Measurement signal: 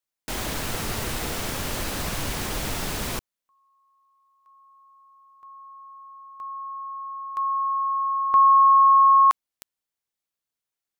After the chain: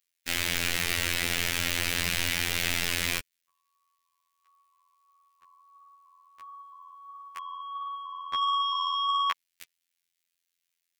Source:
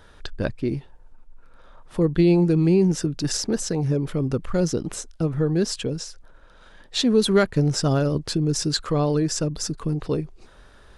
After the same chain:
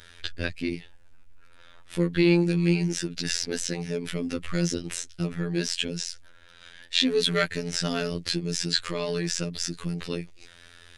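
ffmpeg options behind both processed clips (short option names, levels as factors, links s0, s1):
-filter_complex "[0:a]flanger=delay=0:depth=3.7:regen=-64:speed=1.5:shape=sinusoidal,acrossover=split=3400[s0][s1];[s1]acompressor=threshold=0.00891:ratio=4:attack=1:release=60[s2];[s0][s2]amix=inputs=2:normalize=0,asplit=2[s3][s4];[s4]asoftclip=type=tanh:threshold=0.0944,volume=0.531[s5];[s3][s5]amix=inputs=2:normalize=0,highshelf=f=1500:t=q:w=1.5:g=11,afftfilt=real='hypot(re,im)*cos(PI*b)':imag='0':win_size=2048:overlap=0.75,volume=0.891"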